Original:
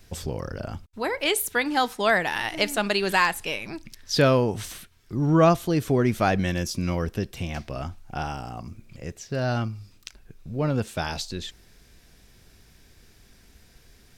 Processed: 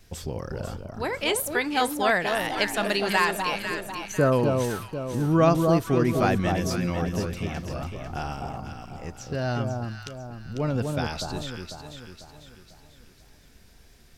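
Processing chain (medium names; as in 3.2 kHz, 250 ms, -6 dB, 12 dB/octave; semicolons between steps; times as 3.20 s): spectral selection erased 3.59–4.33 s, 1.6–5.8 kHz; wow and flutter 24 cents; echo whose repeats swap between lows and highs 248 ms, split 1.2 kHz, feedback 65%, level -3.5 dB; trim -2 dB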